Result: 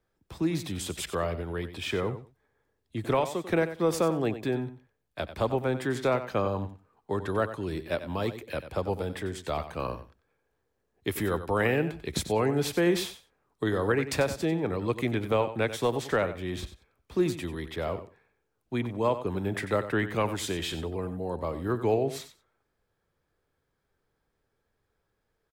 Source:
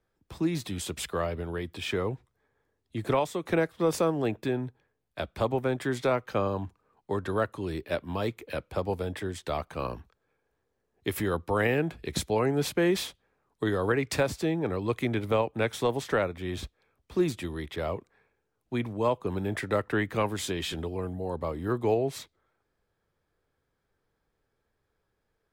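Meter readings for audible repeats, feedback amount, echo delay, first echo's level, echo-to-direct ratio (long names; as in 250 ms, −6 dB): 2, 16%, 93 ms, −12.0 dB, −12.0 dB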